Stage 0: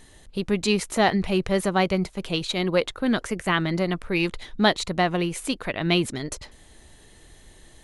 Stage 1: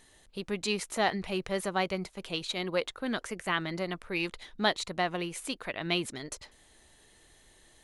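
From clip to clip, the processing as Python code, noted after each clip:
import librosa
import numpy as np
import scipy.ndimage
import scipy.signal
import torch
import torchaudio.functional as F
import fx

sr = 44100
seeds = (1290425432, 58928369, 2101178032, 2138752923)

y = fx.low_shelf(x, sr, hz=300.0, db=-8.5)
y = y * librosa.db_to_amplitude(-6.0)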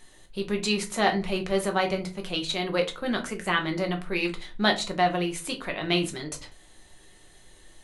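y = fx.room_shoebox(x, sr, seeds[0], volume_m3=130.0, walls='furnished', distance_m=1.0)
y = y * librosa.db_to_amplitude(3.0)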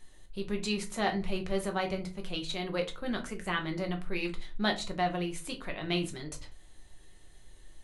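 y = fx.low_shelf(x, sr, hz=110.0, db=11.5)
y = y * librosa.db_to_amplitude(-7.5)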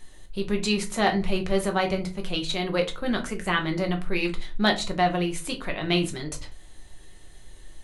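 y = np.clip(x, -10.0 ** (-17.5 / 20.0), 10.0 ** (-17.5 / 20.0))
y = y * librosa.db_to_amplitude(7.5)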